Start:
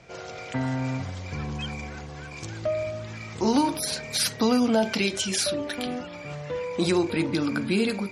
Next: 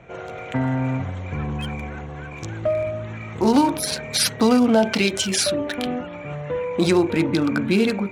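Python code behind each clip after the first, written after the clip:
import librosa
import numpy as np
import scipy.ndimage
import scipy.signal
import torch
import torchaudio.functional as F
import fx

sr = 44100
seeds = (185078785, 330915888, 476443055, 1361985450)

y = fx.wiener(x, sr, points=9)
y = F.gain(torch.from_numpy(y), 5.5).numpy()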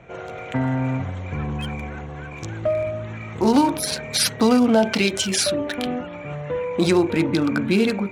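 y = x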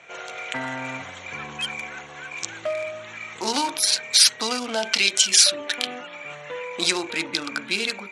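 y = scipy.signal.sosfilt(scipy.signal.butter(2, 70.0, 'highpass', fs=sr, output='sos'), x)
y = fx.rider(y, sr, range_db=3, speed_s=2.0)
y = fx.weighting(y, sr, curve='ITU-R 468')
y = F.gain(torch.from_numpy(y), -3.5).numpy()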